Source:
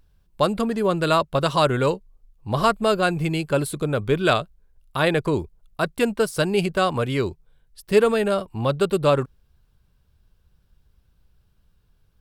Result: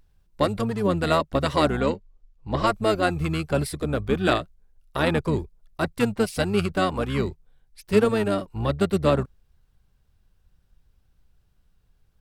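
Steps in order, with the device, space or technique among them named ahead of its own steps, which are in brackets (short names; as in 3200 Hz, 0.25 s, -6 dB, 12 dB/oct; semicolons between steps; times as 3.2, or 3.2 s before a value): 1.8–2.67 LPF 7300 Hz 24 dB/oct; octave pedal (harmoniser -12 st -4 dB); gain -3.5 dB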